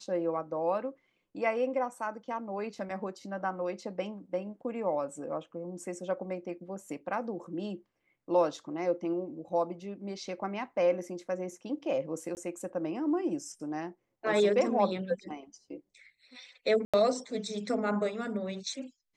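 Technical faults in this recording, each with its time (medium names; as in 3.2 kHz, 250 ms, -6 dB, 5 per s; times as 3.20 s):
12.35–12.37 s: dropout 19 ms
16.85–16.94 s: dropout 86 ms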